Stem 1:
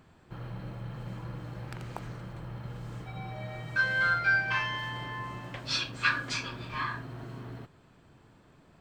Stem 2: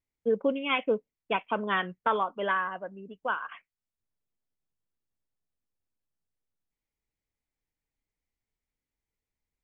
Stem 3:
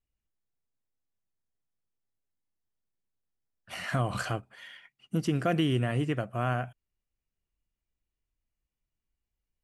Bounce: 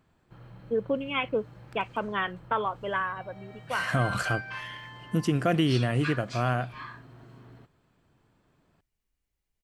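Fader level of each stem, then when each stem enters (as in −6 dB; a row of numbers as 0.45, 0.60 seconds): −8.5, −1.5, +2.5 decibels; 0.00, 0.45, 0.00 seconds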